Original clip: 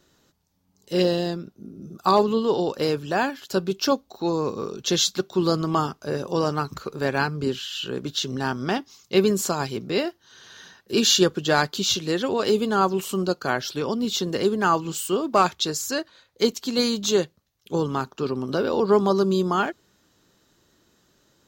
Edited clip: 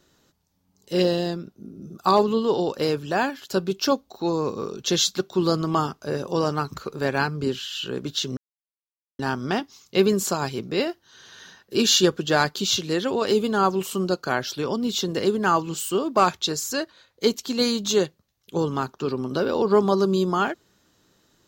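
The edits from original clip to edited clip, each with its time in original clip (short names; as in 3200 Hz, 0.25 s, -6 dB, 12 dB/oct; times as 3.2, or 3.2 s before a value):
8.37 insert silence 0.82 s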